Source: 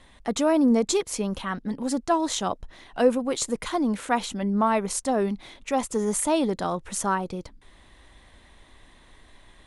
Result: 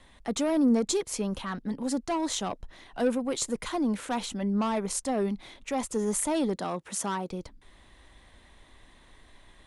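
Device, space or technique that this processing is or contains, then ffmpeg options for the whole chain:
one-band saturation: -filter_complex "[0:a]acrossover=split=360|4900[a][b][c];[b]asoftclip=type=tanh:threshold=-24dB[d];[a][d][c]amix=inputs=3:normalize=0,asettb=1/sr,asplit=3[e][f][g];[e]atrim=end=6.564[h];[f]atrim=start=6.56:end=7.31,asetpts=PTS-STARTPTS,afade=t=in:d=0.004:c=qsin,afade=t=out:st=0.746:d=0.004:c=qsin,highpass=150[i];[g]atrim=start=7.306[j];[h][i]acrossfade=d=0.004:c1=hsin:c2=qsin[k];[k][j]acrossfade=d=0.004:c1=qsin:c2=hsin,volume=-2.5dB"

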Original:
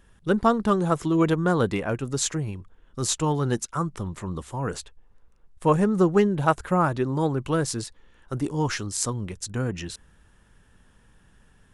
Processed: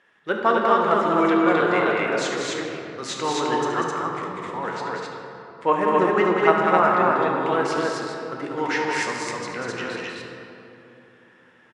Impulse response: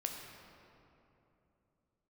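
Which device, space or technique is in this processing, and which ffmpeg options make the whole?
station announcement: -filter_complex "[0:a]highpass=440,lowpass=3.8k,equalizer=f=2k:t=o:w=0.51:g=7.5,aecho=1:1:72.89|192.4|259.5:0.251|0.562|0.891[a];[1:a]atrim=start_sample=2205[b];[a][b]afir=irnorm=-1:irlink=0,asettb=1/sr,asplit=3[c][d][e];[c]atrim=end=4.694[f];[d]atrim=start=4.69:end=5.73,asetpts=PTS-STARTPTS,afade=t=in:d=0.004:c=qsin,afade=t=out:st=1.036:d=0.004:c=qsin,lowpass=8.1k[g];[e]atrim=start=5.726[h];[f][g]acrossfade=d=0.004:c1=hsin:c2=qsin[i];[i][h]acrossfade=d=0.004:c1=qsin:c2=hsin,volume=3dB"

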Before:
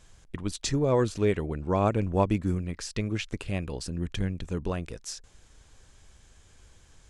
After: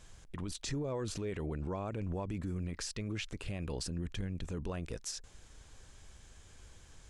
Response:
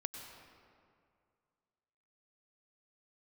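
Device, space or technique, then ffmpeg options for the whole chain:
stacked limiters: -af "alimiter=limit=-17.5dB:level=0:latency=1:release=134,alimiter=limit=-23dB:level=0:latency=1:release=49,alimiter=level_in=5.5dB:limit=-24dB:level=0:latency=1:release=34,volume=-5.5dB"

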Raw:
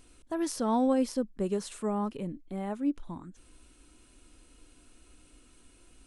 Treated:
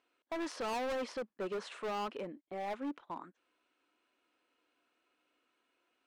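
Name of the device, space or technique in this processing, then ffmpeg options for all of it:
walkie-talkie: -af "highpass=570,lowpass=2.6k,asoftclip=type=hard:threshold=-40dB,agate=range=-15dB:threshold=-57dB:ratio=16:detection=peak,volume=5.5dB"

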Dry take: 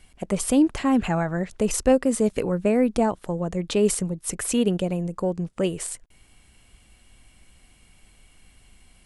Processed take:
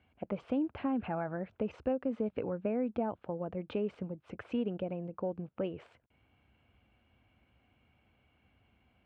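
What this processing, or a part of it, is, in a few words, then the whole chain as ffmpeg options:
bass amplifier: -af "acompressor=threshold=-21dB:ratio=5,highpass=f=73:w=0.5412,highpass=f=73:w=1.3066,equalizer=f=170:t=q:w=4:g=-7,equalizer=f=380:t=q:w=4:g=-4,equalizer=f=1.1k:t=q:w=4:g=-4,equalizer=f=1.9k:t=q:w=4:g=-10,lowpass=f=2.4k:w=0.5412,lowpass=f=2.4k:w=1.3066,volume=-6.5dB"

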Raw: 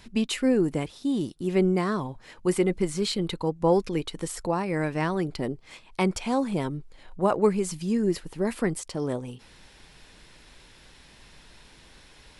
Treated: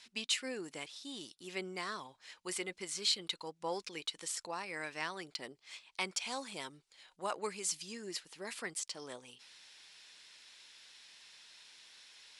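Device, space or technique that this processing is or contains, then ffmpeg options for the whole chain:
piezo pickup straight into a mixer: -filter_complex "[0:a]asettb=1/sr,asplit=3[a][b][c];[a]atrim=end=6.204[d];[b]atrim=start=6.2:end=7.82,asetpts=PTS-STARTPTS,afade=t=in:d=0.004:c=qsin,afade=t=out:st=1.616:d=0.004:c=qsin,highshelf=f=5.8k:g=4.5[e];[c]atrim=start=7.816[f];[d][e]acrossfade=d=0.004:c1=hsin:c2=qsin[g];[g][f]acrossfade=d=0.004:c1=qsin:c2=hsin,lowpass=5.4k,aderivative,volume=5.5dB"

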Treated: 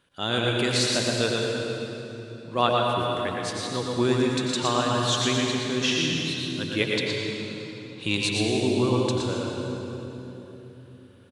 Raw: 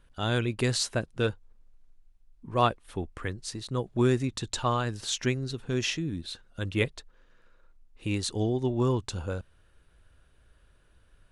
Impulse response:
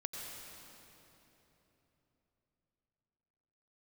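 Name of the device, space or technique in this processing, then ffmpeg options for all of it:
PA in a hall: -filter_complex "[0:a]asettb=1/sr,asplit=3[a][b][c];[a]atrim=end=6.874[d];[b]atrim=start=6.87:end=8.17,asetpts=PTS-STARTPTS,afade=t=in:d=0.004:c=qsin,afade=t=out:st=1.296:d=0.004:c=qsin,equalizer=f=125:t=o:w=1:g=7,equalizer=f=1k:t=o:w=1:g=10,equalizer=f=4k:t=o:w=1:g=11,equalizer=f=8k:t=o:w=1:g=4[e];[c]atrim=start=8.166[f];[d][e]acrossfade=d=0.004:c1=hsin:c2=qsin[g];[g][f]acrossfade=d=0.004:c1=qsin:c2=hsin,highpass=160,equalizer=f=3.4k:t=o:w=0.75:g=5.5,aecho=1:1:117:0.562[h];[1:a]atrim=start_sample=2205[i];[h][i]afir=irnorm=-1:irlink=0,volume=4dB"

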